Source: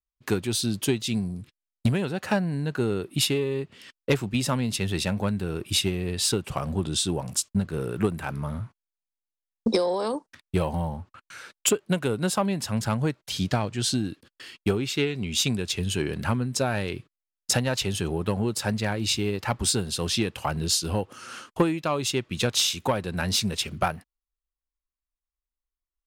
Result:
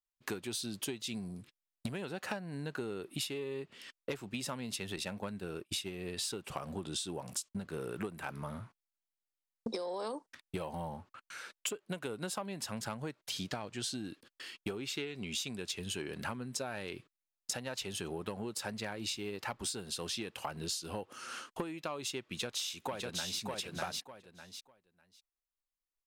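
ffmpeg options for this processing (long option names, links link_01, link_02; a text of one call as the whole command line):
ffmpeg -i in.wav -filter_complex "[0:a]asettb=1/sr,asplit=3[link_01][link_02][link_03];[link_01]atrim=end=4.964[link_04];[link_02]atrim=start=4.96:end=6.17,asetpts=PTS-STARTPTS,afade=type=in:duration=0.004:curve=qsin,afade=type=out:start_time=1.206:duration=0.004:curve=qsin,agate=range=-33dB:threshold=-28dB:ratio=3:release=100:detection=peak[link_05];[link_03]atrim=start=6.166[link_06];[link_04][link_05]acrossfade=duration=0.004:curve1=hsin:curve2=qsin[link_07];[link_07][link_06]acrossfade=duration=0.004:curve1=qsin:curve2=hsin,asplit=2[link_08][link_09];[link_09]afade=type=in:start_time=22.24:duration=0.01,afade=type=out:start_time=23.4:duration=0.01,aecho=0:1:600|1200|1800:0.668344|0.100252|0.0150377[link_10];[link_08][link_10]amix=inputs=2:normalize=0,equalizer=frequency=64:width_type=o:width=2.8:gain=-13,acompressor=threshold=-32dB:ratio=6,volume=-3.5dB" out.wav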